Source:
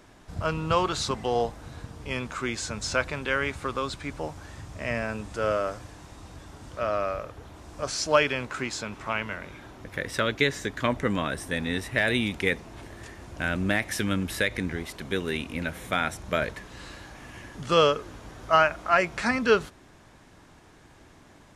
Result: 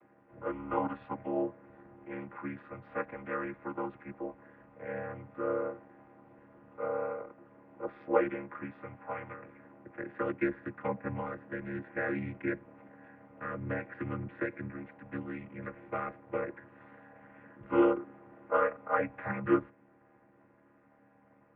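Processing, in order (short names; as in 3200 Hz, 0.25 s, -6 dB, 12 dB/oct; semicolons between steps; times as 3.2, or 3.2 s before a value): chord vocoder major triad, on D3; mistuned SSB -93 Hz 310–2400 Hz; gain -3.5 dB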